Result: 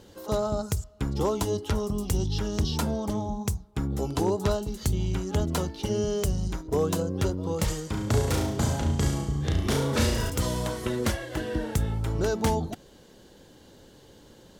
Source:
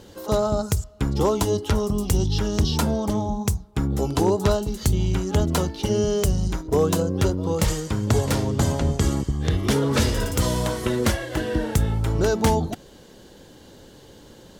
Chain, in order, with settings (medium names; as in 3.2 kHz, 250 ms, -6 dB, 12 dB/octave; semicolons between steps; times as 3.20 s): 7.90–10.30 s: flutter echo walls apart 6 m, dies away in 0.57 s; trim -5.5 dB